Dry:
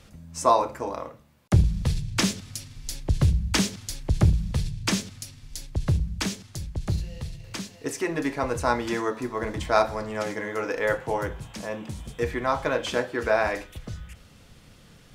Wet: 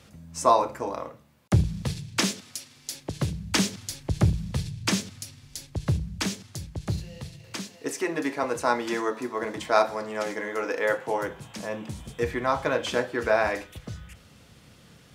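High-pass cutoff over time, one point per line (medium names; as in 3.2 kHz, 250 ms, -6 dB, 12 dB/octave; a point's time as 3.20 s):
1.55 s 80 Hz
2.62 s 340 Hz
3.83 s 86 Hz
6.88 s 86 Hz
8.02 s 220 Hz
11.18 s 220 Hz
11.81 s 71 Hz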